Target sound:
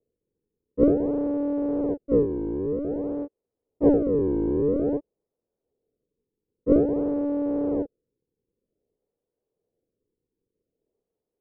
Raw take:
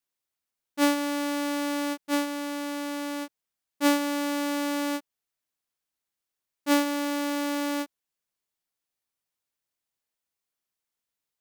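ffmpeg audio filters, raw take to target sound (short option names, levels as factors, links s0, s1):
-af "acrusher=samples=39:mix=1:aa=0.000001:lfo=1:lforange=62.4:lforate=0.51,lowpass=f=460:t=q:w=4.9"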